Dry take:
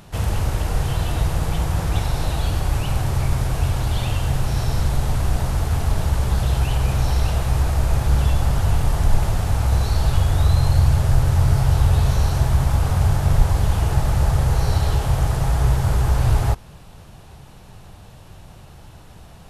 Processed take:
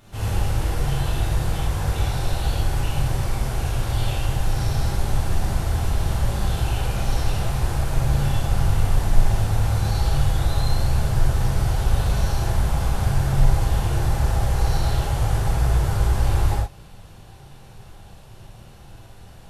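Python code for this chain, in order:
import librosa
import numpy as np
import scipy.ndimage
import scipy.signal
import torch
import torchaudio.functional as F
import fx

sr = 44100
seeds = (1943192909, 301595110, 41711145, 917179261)

y = fx.rev_gated(x, sr, seeds[0], gate_ms=150, shape='flat', drr_db=-8.0)
y = y * librosa.db_to_amplitude(-10.0)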